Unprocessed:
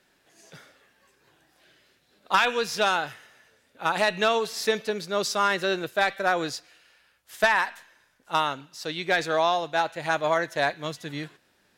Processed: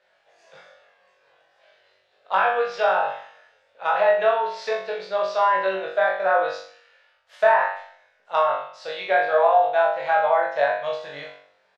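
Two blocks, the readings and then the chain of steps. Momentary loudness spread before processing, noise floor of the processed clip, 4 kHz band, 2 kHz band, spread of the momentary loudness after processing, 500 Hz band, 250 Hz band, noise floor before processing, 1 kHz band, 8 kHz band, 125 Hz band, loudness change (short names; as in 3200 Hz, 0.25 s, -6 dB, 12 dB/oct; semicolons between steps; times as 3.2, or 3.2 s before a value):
11 LU, -65 dBFS, -7.5 dB, +0.5 dB, 13 LU, +6.0 dB, -11.0 dB, -66 dBFS, +5.5 dB, under -15 dB, under -10 dB, +4.0 dB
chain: treble ducked by the level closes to 1700 Hz, closed at -19.5 dBFS; LPF 3700 Hz 12 dB/oct; resonant low shelf 400 Hz -12 dB, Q 3; doubler 32 ms -6 dB; flutter echo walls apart 3.6 m, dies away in 0.53 s; gain -3 dB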